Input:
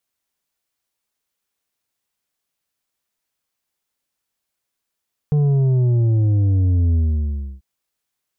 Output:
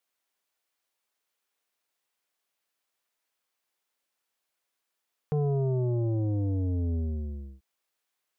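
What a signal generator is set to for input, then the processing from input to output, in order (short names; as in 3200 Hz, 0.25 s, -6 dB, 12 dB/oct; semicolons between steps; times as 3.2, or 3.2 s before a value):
sub drop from 150 Hz, over 2.29 s, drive 6.5 dB, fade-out 0.66 s, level -14 dB
tone controls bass -13 dB, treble -4 dB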